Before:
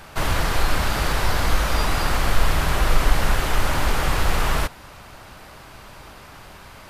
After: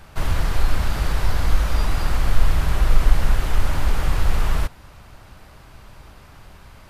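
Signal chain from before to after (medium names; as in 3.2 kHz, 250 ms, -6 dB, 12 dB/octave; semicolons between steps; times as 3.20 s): bass shelf 160 Hz +10.5 dB; trim -6.5 dB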